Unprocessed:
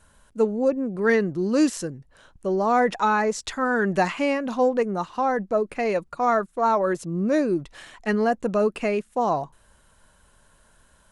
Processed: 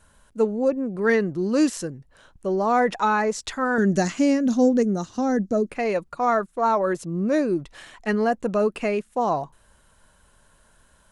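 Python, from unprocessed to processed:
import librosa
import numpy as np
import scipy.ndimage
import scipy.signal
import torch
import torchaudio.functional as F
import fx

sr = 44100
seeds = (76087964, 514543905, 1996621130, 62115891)

y = fx.graphic_eq_15(x, sr, hz=(100, 250, 1000, 2500, 6300), db=(12, 9, -12, -7, 12), at=(3.78, 5.69))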